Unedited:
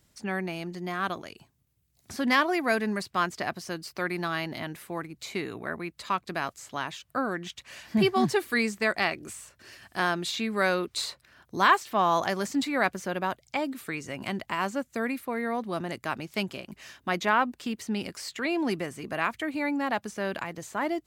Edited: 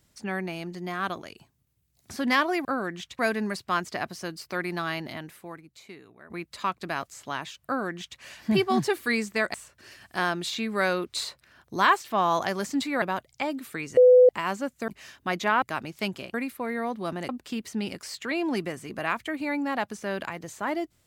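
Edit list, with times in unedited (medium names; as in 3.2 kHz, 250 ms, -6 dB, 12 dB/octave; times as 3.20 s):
4.45–5.76 s: fade out quadratic, to -16.5 dB
7.12–7.66 s: copy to 2.65 s
9.00–9.35 s: delete
12.83–13.16 s: delete
14.11–14.43 s: bleep 501 Hz -11 dBFS
15.02–15.97 s: swap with 16.69–17.43 s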